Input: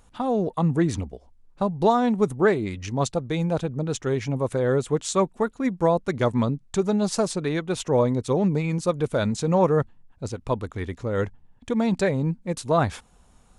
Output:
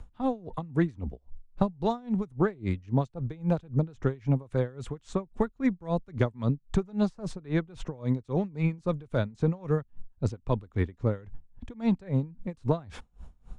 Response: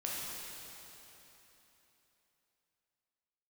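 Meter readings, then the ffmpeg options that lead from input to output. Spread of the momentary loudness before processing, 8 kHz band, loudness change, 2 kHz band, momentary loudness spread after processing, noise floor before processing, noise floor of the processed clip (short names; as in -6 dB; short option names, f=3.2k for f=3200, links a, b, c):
8 LU, under -20 dB, -6.0 dB, -8.5 dB, 7 LU, -57 dBFS, -63 dBFS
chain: -filter_complex "[0:a]acrossover=split=140|870|1800[a][b][c][d];[a]acompressor=threshold=-41dB:ratio=4[e];[b]acompressor=threshold=-29dB:ratio=4[f];[c]acompressor=threshold=-39dB:ratio=4[g];[d]acompressor=threshold=-41dB:ratio=4[h];[e][f][g][h]amix=inputs=4:normalize=0,aemphasis=mode=reproduction:type=bsi,aeval=exprs='val(0)*pow(10,-26*(0.5-0.5*cos(2*PI*3.7*n/s))/20)':c=same,volume=2dB"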